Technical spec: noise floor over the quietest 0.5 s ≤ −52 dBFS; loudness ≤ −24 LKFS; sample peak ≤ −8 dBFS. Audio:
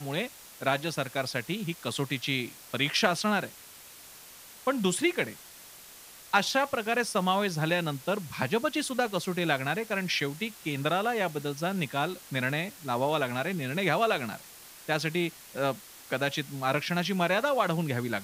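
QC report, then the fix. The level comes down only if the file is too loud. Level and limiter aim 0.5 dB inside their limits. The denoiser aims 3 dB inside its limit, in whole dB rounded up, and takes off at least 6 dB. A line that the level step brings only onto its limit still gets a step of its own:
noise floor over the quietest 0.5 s −50 dBFS: out of spec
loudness −29.5 LKFS: in spec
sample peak −9.0 dBFS: in spec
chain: broadband denoise 6 dB, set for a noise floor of −50 dBFS

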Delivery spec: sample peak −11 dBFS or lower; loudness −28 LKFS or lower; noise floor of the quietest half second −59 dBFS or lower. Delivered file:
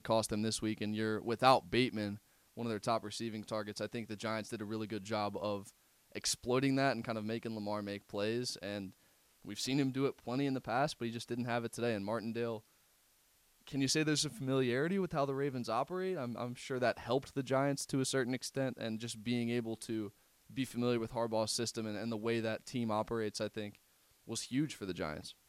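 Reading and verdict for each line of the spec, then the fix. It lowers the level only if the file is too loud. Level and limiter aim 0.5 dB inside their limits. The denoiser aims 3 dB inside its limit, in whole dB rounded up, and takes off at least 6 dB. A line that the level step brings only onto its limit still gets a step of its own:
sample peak −13.5 dBFS: in spec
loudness −36.5 LKFS: in spec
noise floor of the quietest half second −71 dBFS: in spec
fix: no processing needed

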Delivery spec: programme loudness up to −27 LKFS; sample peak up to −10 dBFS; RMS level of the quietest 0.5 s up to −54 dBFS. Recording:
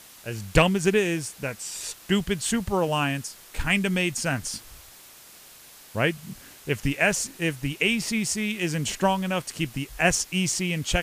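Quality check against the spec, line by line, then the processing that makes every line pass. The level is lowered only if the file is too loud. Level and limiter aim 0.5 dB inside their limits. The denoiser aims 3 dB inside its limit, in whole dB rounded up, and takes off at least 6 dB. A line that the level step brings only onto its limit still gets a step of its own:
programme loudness −25.5 LKFS: out of spec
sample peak −7.0 dBFS: out of spec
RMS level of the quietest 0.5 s −49 dBFS: out of spec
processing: broadband denoise 6 dB, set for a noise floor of −49 dBFS
level −2 dB
brickwall limiter −10.5 dBFS

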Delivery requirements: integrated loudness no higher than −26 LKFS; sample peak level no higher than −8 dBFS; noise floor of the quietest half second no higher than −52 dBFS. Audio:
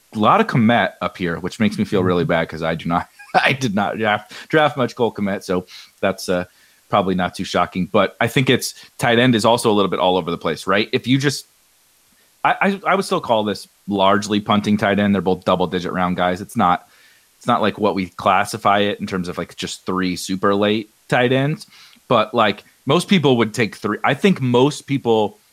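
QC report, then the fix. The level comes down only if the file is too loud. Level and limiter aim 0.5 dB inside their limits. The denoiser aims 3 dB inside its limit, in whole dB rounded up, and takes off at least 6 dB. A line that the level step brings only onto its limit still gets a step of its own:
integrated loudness −18.5 LKFS: out of spec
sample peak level −2.0 dBFS: out of spec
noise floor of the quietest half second −57 dBFS: in spec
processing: level −8 dB

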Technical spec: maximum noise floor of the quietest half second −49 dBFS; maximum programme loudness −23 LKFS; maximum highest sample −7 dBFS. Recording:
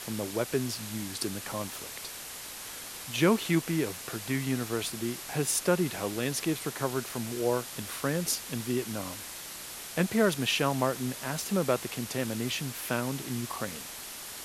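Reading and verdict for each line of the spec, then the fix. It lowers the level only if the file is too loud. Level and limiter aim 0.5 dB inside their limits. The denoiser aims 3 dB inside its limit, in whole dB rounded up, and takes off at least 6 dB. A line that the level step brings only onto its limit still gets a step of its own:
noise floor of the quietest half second −42 dBFS: out of spec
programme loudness −31.0 LKFS: in spec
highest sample −11.0 dBFS: in spec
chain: broadband denoise 10 dB, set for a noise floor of −42 dBFS

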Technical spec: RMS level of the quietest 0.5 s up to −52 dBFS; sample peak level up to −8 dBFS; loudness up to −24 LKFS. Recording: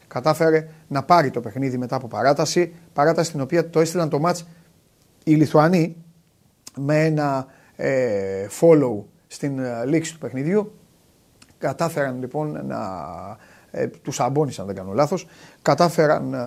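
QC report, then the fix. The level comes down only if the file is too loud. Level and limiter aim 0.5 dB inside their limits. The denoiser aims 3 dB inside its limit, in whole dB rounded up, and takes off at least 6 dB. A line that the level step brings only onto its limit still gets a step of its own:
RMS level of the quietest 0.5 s −59 dBFS: in spec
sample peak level −2.0 dBFS: out of spec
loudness −21.5 LKFS: out of spec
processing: level −3 dB
brickwall limiter −8.5 dBFS

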